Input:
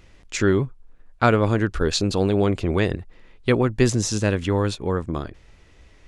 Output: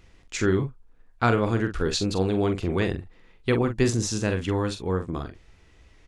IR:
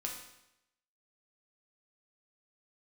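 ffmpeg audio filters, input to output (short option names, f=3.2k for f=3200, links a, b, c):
-filter_complex "[0:a]bandreject=f=580:w=12,asplit=2[a][b];[b]adelay=43,volume=-8dB[c];[a][c]amix=inputs=2:normalize=0,volume=-4dB"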